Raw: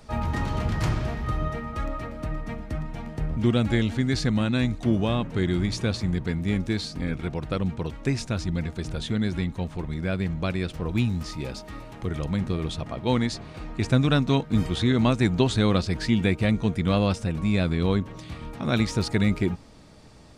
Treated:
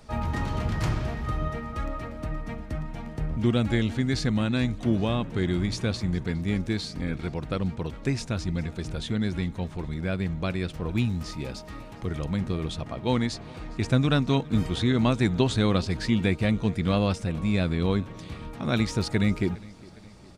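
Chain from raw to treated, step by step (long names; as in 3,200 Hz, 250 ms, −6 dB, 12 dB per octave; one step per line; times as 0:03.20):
repeating echo 410 ms, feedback 57%, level −23 dB
level −1.5 dB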